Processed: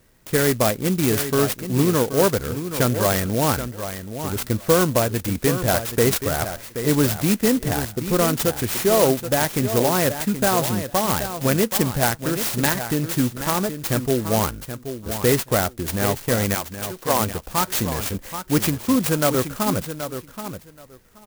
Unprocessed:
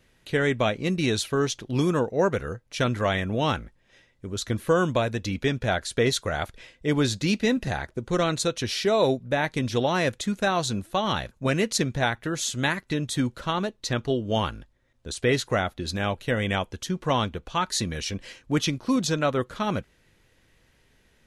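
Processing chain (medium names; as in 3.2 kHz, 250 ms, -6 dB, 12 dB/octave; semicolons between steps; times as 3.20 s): 16.54–17.19 s: high-pass 1.1 kHz -> 290 Hz; on a send: feedback delay 777 ms, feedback 16%, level -10 dB; on the sum: sampling jitter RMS 0.093 ms; trim +4.5 dB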